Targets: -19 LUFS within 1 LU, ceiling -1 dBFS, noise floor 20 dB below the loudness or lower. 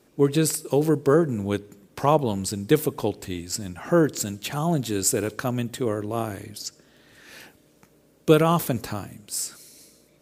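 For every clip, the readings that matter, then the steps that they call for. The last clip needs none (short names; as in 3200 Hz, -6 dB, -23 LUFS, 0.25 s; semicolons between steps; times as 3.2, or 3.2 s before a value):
loudness -24.5 LUFS; peak -3.0 dBFS; loudness target -19.0 LUFS
-> gain +5.5 dB; limiter -1 dBFS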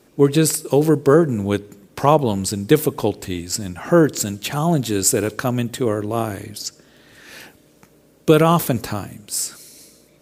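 loudness -19.0 LUFS; peak -1.0 dBFS; noise floor -54 dBFS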